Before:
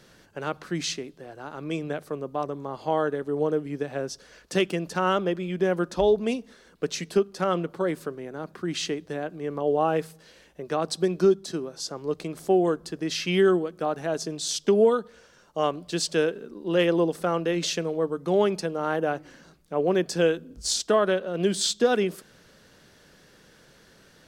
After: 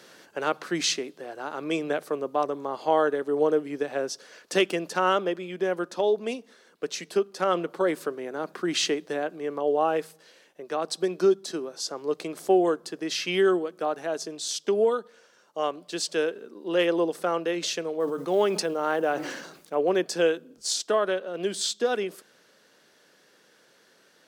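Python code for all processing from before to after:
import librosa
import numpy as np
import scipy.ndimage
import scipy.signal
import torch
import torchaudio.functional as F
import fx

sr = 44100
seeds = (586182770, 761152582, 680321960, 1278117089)

y = fx.chain(x, sr, fx.quant_companded(bits=8),
    fx.sustainer(db_per_s=49.0), at=(18.0, 19.75))
y = scipy.signal.sosfilt(scipy.signal.butter(2, 310.0, 'highpass', fs=sr, output='sos'), y)
y = fx.rider(y, sr, range_db=10, speed_s=2.0)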